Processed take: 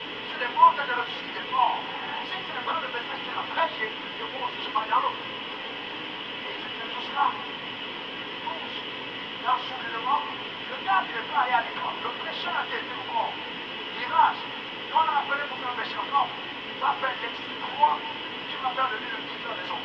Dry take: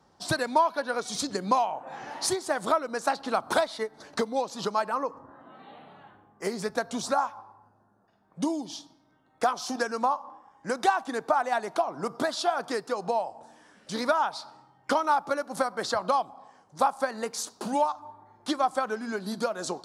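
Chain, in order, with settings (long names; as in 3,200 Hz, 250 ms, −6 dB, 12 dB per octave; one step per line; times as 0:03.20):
high-pass filter 810 Hz 24 dB per octave
volume swells 102 ms
bit-depth reduction 6 bits, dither triangular
transistor ladder low-pass 3,200 Hz, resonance 75%
convolution reverb RT60 0.25 s, pre-delay 3 ms, DRR −4.5 dB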